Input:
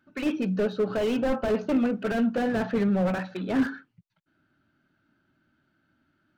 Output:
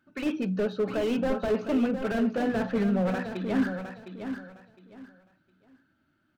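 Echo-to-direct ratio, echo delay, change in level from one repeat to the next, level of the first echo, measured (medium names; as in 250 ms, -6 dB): -8.0 dB, 710 ms, -12.5 dB, -8.5 dB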